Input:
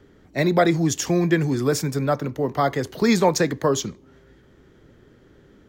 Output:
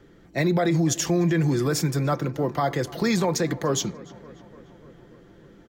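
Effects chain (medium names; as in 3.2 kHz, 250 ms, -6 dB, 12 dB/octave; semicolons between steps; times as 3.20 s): comb 5.9 ms, depth 43%; peak limiter -14 dBFS, peak gain reduction 10 dB; on a send: filtered feedback delay 295 ms, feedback 72%, low-pass 3 kHz, level -20 dB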